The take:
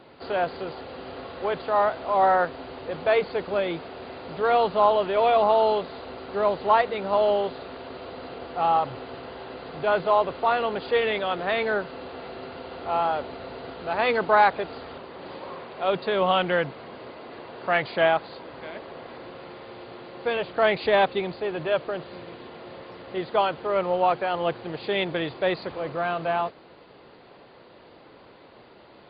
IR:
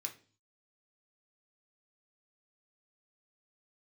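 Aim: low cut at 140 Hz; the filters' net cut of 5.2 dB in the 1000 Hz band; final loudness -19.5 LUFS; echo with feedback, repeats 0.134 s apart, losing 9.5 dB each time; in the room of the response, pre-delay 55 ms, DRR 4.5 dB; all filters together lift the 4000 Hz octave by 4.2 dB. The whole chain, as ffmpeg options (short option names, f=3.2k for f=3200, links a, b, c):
-filter_complex "[0:a]highpass=140,equalizer=f=1k:t=o:g=-7.5,equalizer=f=4k:t=o:g=6,aecho=1:1:134|268|402|536:0.335|0.111|0.0365|0.012,asplit=2[a][b];[1:a]atrim=start_sample=2205,adelay=55[c];[b][c]afir=irnorm=-1:irlink=0,volume=-2.5dB[d];[a][d]amix=inputs=2:normalize=0,volume=6.5dB"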